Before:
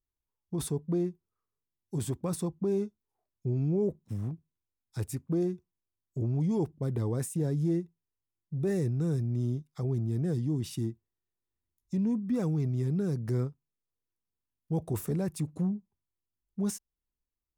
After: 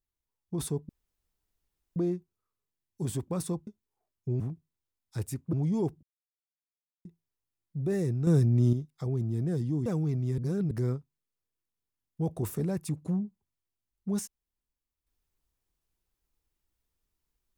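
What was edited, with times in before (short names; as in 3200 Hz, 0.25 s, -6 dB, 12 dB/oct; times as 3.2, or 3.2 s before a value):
0.89 insert room tone 1.07 s
2.6–2.85 cut
3.58–4.21 cut
5.34–6.3 cut
6.8–7.82 mute
9.04–9.5 gain +7 dB
10.63–12.37 cut
12.89–13.22 reverse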